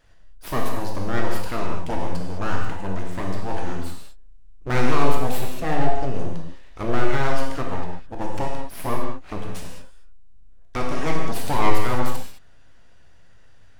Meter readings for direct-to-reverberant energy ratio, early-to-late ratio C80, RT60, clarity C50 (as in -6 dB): -1.0 dB, 3.5 dB, no single decay rate, 1.5 dB